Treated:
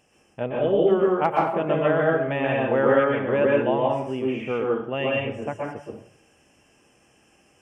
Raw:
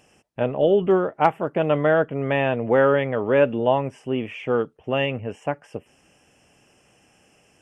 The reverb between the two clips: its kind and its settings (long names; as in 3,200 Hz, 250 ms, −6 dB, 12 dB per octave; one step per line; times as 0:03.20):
dense smooth reverb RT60 0.58 s, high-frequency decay 0.8×, pre-delay 110 ms, DRR −3 dB
level −5.5 dB